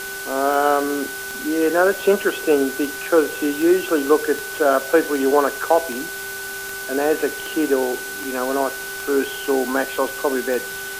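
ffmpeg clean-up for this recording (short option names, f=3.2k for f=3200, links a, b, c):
-af "adeclick=t=4,bandreject=f=392.2:t=h:w=4,bandreject=f=784.4:t=h:w=4,bandreject=f=1.1766k:t=h:w=4,bandreject=f=1.5k:w=30,afwtdn=0.022"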